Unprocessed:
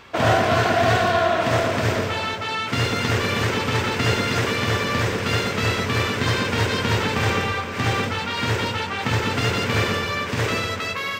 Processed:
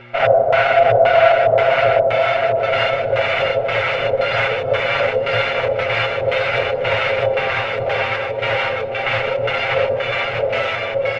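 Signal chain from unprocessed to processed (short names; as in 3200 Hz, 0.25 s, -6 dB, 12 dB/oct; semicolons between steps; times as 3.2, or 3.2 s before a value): minimum comb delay 1.4 ms; LFO low-pass square 1.9 Hz 510–2400 Hz; buzz 120 Hz, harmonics 3, -35 dBFS -1 dB/oct; resonant low shelf 390 Hz -9 dB, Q 3; comb 7.4 ms, depth 74%; bouncing-ball echo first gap 0.65 s, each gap 0.85×, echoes 5; gain -1 dB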